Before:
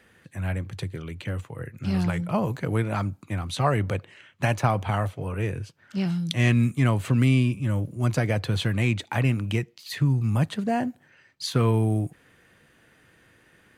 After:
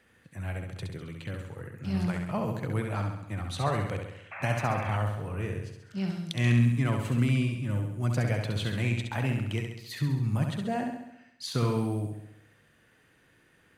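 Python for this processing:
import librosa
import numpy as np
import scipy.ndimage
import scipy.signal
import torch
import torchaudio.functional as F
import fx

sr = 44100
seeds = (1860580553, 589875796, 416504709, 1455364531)

y = fx.room_flutter(x, sr, wall_m=11.5, rt60_s=0.82)
y = fx.spec_paint(y, sr, seeds[0], shape='noise', start_s=4.31, length_s=0.66, low_hz=540.0, high_hz=2700.0, level_db=-34.0)
y = F.gain(torch.from_numpy(y), -6.5).numpy()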